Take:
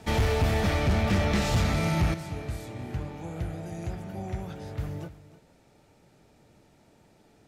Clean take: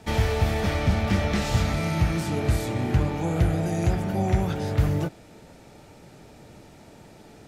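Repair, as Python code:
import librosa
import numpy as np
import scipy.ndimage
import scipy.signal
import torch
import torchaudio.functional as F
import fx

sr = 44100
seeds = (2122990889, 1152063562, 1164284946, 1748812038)

y = fx.fix_declip(x, sr, threshold_db=-18.5)
y = fx.fix_echo_inverse(y, sr, delay_ms=307, level_db=-16.5)
y = fx.gain(y, sr, db=fx.steps((0.0, 0.0), (2.14, 11.5)))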